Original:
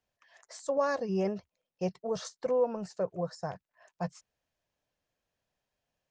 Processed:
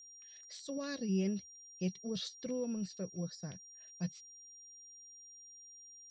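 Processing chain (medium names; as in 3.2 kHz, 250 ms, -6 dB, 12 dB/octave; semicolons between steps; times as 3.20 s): FFT filter 150 Hz 0 dB, 240 Hz +6 dB, 850 Hz -21 dB, 3.9 kHz +11 dB, 6.2 kHz -6 dB; whistle 5.7 kHz -50 dBFS; trim -3 dB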